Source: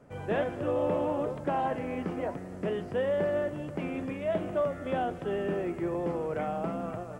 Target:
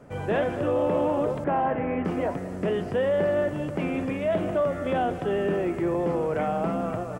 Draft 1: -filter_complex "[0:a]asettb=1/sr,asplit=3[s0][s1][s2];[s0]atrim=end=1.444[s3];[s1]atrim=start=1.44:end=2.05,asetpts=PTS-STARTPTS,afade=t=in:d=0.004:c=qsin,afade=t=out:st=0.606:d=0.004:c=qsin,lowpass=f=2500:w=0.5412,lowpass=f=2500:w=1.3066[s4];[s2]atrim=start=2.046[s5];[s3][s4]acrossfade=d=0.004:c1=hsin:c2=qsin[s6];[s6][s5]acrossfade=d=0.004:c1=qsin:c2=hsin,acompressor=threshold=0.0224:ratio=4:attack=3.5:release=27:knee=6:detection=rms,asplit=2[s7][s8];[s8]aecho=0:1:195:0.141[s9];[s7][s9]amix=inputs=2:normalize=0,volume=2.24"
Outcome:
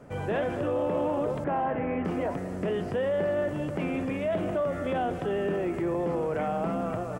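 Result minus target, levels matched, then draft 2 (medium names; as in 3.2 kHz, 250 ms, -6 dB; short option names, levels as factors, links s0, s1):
compression: peak gain reduction +4.5 dB
-filter_complex "[0:a]asettb=1/sr,asplit=3[s0][s1][s2];[s0]atrim=end=1.444[s3];[s1]atrim=start=1.44:end=2.05,asetpts=PTS-STARTPTS,afade=t=in:d=0.004:c=qsin,afade=t=out:st=0.606:d=0.004:c=qsin,lowpass=f=2500:w=0.5412,lowpass=f=2500:w=1.3066[s4];[s2]atrim=start=2.046[s5];[s3][s4]acrossfade=d=0.004:c1=hsin:c2=qsin[s6];[s6][s5]acrossfade=d=0.004:c1=qsin:c2=hsin,acompressor=threshold=0.0447:ratio=4:attack=3.5:release=27:knee=6:detection=rms,asplit=2[s7][s8];[s8]aecho=0:1:195:0.141[s9];[s7][s9]amix=inputs=2:normalize=0,volume=2.24"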